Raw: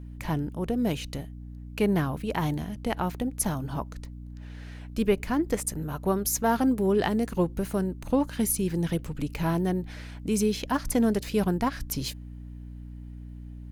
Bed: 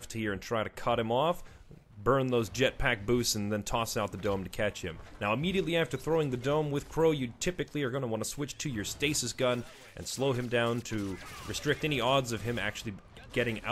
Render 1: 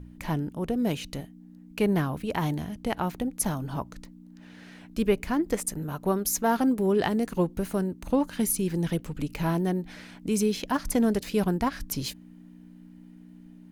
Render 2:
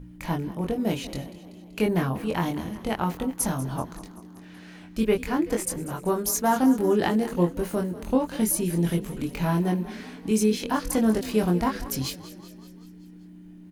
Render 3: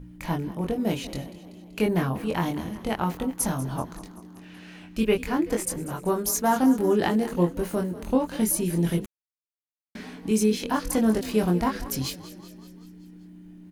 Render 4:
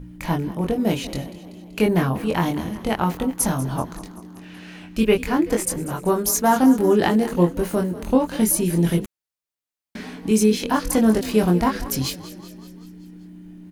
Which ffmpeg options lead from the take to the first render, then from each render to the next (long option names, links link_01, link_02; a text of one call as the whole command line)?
ffmpeg -i in.wav -af "bandreject=frequency=60:width_type=h:width=4,bandreject=frequency=120:width_type=h:width=4" out.wav
ffmpeg -i in.wav -filter_complex "[0:a]asplit=2[link_01][link_02];[link_02]adelay=23,volume=-3dB[link_03];[link_01][link_03]amix=inputs=2:normalize=0,asplit=7[link_04][link_05][link_06][link_07][link_08][link_09][link_10];[link_05]adelay=191,afreqshift=32,volume=-16dB[link_11];[link_06]adelay=382,afreqshift=64,volume=-20.7dB[link_12];[link_07]adelay=573,afreqshift=96,volume=-25.5dB[link_13];[link_08]adelay=764,afreqshift=128,volume=-30.2dB[link_14];[link_09]adelay=955,afreqshift=160,volume=-34.9dB[link_15];[link_10]adelay=1146,afreqshift=192,volume=-39.7dB[link_16];[link_04][link_11][link_12][link_13][link_14][link_15][link_16]amix=inputs=7:normalize=0" out.wav
ffmpeg -i in.wav -filter_complex "[0:a]asettb=1/sr,asplit=3[link_01][link_02][link_03];[link_01]atrim=end=4.344[link_04];[link_02]atrim=start=4.34:end=5.22,asetpts=PTS-STARTPTS,afade=type=in:duration=0.004:curve=qsin,afade=type=out:start_time=0.876:duration=0.004:curve=qsin,equalizer=frequency=2700:width=4.3:gain=6.5[link_05];[link_03]atrim=start=5.216[link_06];[link_04][link_05]acrossfade=duration=0.004:curve1=hsin:curve2=qsin[link_07];[link_07][link_06]acrossfade=duration=0.004:curve1=qsin:curve2=hsin,asplit=3[link_08][link_09][link_10];[link_08]atrim=end=9.06,asetpts=PTS-STARTPTS,afade=type=out:start_time=9.056:duration=0.004:curve=hsin[link_11];[link_09]atrim=start=9.06:end=9.95,asetpts=PTS-STARTPTS,volume=0[link_12];[link_10]atrim=start=9.95,asetpts=PTS-STARTPTS,afade=type=in:duration=0.004:curve=hsin[link_13];[link_11][link_12][link_13]concat=n=3:v=0:a=1" out.wav
ffmpeg -i in.wav -af "volume=5dB" out.wav